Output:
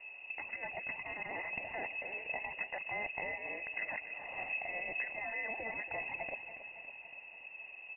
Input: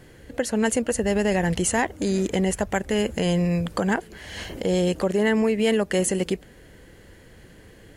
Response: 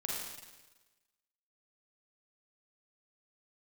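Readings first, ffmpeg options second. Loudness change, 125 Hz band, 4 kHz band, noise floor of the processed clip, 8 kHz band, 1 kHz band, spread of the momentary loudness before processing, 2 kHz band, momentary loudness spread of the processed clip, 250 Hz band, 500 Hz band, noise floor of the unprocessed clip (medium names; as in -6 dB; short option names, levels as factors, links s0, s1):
-16.0 dB, -33.5 dB, -23.0 dB, -53 dBFS, under -40 dB, -13.0 dB, 8 LU, -6.0 dB, 10 LU, -34.0 dB, -23.0 dB, -49 dBFS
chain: -filter_complex "[0:a]afftfilt=real='re*lt(hypot(re,im),0.126)':imag='im*lt(hypot(re,im),0.126)':win_size=1024:overlap=0.75,asplit=3[s0][s1][s2];[s0]bandpass=f=300:t=q:w=8,volume=1[s3];[s1]bandpass=f=870:t=q:w=8,volume=0.501[s4];[s2]bandpass=f=2240:t=q:w=8,volume=0.355[s5];[s3][s4][s5]amix=inputs=3:normalize=0,areverse,acompressor=mode=upward:threshold=0.001:ratio=2.5,areverse,equalizer=f=670:w=2.9:g=-3.5,asplit=2[s6][s7];[s7]aecho=0:1:280|560|840|1120|1400|1680|1960:0.251|0.151|0.0904|0.0543|0.0326|0.0195|0.0117[s8];[s6][s8]amix=inputs=2:normalize=0,lowpass=f=2500:t=q:w=0.5098,lowpass=f=2500:t=q:w=0.6013,lowpass=f=2500:t=q:w=0.9,lowpass=f=2500:t=q:w=2.563,afreqshift=-2900,volume=3.35"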